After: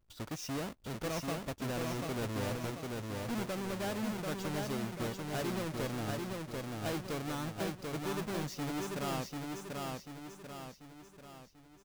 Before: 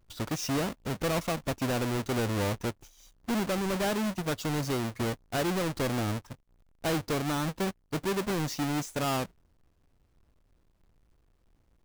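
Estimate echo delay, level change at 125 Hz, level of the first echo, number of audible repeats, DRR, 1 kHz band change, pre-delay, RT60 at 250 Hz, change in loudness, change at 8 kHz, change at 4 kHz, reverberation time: 740 ms, -6.0 dB, -3.0 dB, 6, no reverb, -6.5 dB, no reverb, no reverb, -7.0 dB, -6.5 dB, -6.5 dB, no reverb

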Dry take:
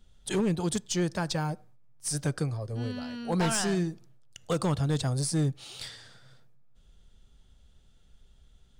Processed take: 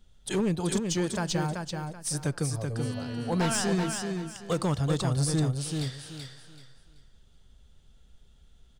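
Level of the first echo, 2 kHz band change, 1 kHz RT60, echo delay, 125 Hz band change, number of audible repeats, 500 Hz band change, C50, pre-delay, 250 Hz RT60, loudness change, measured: -5.0 dB, +1.5 dB, no reverb, 382 ms, +1.5 dB, 3, +1.0 dB, no reverb, no reverb, no reverb, +0.5 dB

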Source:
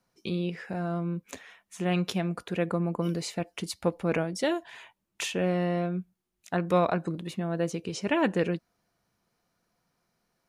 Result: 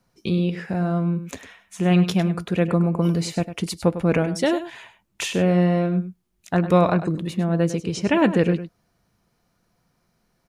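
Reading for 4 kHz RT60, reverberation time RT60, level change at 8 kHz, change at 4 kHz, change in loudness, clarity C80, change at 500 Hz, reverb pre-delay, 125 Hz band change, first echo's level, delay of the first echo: no reverb, no reverb, +5.5 dB, +5.5 dB, +8.0 dB, no reverb, +6.5 dB, no reverb, +10.0 dB, -12.0 dB, 101 ms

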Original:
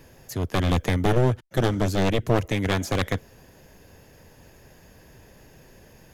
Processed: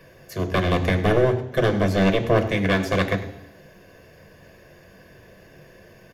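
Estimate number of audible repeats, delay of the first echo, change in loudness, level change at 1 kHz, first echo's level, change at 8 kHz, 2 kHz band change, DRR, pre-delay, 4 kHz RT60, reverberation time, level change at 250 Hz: 1, 100 ms, +3.0 dB, +2.5 dB, -16.0 dB, -4.5 dB, +5.5 dB, 6.5 dB, 3 ms, 0.85 s, 0.80 s, +3.0 dB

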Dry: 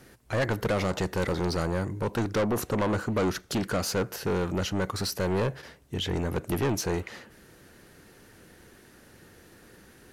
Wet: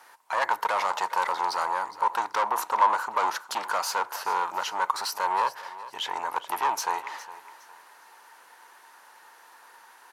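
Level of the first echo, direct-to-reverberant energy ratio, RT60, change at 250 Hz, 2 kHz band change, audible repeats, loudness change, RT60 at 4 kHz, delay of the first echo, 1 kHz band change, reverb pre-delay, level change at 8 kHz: -16.0 dB, no reverb, no reverb, -20.5 dB, +3.5 dB, 2, +1.5 dB, no reverb, 412 ms, +12.0 dB, no reverb, +0.5 dB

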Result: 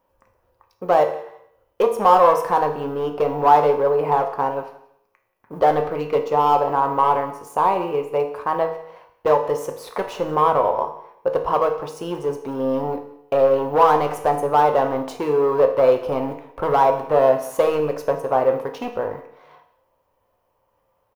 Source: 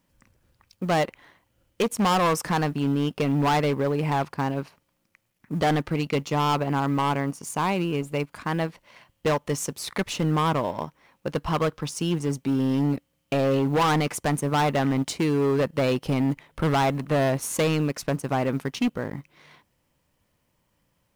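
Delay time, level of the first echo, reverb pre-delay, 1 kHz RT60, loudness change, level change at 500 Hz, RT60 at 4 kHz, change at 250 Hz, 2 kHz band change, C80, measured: 180 ms, -21.0 dB, 4 ms, 0.75 s, +5.5 dB, +8.5 dB, 0.70 s, -5.0 dB, -2.0 dB, 12.0 dB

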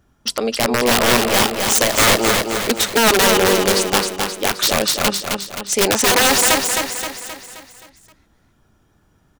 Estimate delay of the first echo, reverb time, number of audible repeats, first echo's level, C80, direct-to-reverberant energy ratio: 263 ms, no reverb, 6, -4.5 dB, no reverb, no reverb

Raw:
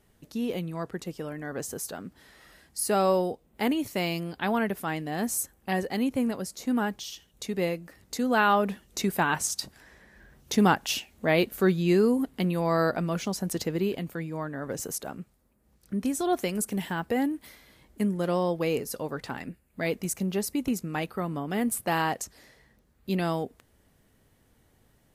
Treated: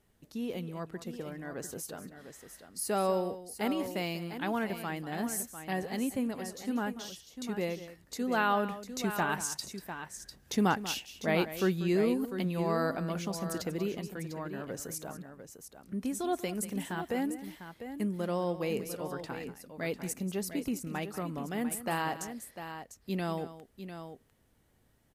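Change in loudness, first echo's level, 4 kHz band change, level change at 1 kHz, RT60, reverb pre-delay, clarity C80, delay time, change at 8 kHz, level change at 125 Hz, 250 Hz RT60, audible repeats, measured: -6.0 dB, -14.0 dB, -5.5 dB, -5.5 dB, no reverb, no reverb, no reverb, 190 ms, -5.5 dB, -5.5 dB, no reverb, 2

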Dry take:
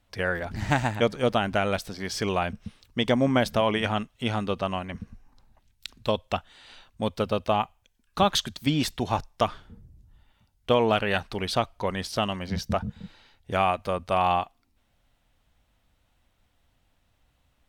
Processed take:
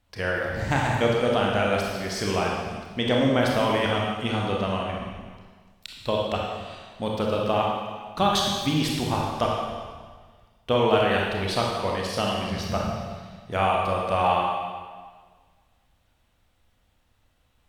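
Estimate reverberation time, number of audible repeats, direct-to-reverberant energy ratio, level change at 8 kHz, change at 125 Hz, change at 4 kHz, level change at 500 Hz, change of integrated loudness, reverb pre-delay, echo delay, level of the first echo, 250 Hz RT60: 1.6 s, no echo, -2.0 dB, +2.0 dB, +2.0 dB, +2.0 dB, +2.5 dB, +1.5 dB, 25 ms, no echo, no echo, 1.6 s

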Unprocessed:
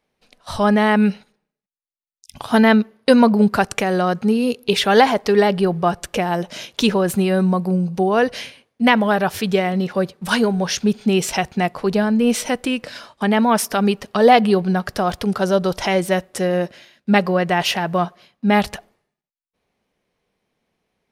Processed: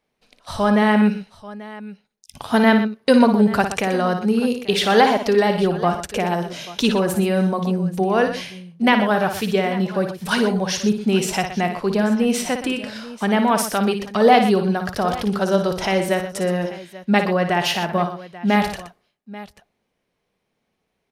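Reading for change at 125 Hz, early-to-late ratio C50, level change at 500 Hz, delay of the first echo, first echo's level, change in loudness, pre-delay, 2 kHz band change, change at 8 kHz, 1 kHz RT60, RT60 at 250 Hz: -1.5 dB, no reverb, -1.0 dB, 57 ms, -8.0 dB, -1.0 dB, no reverb, -1.0 dB, -1.0 dB, no reverb, no reverb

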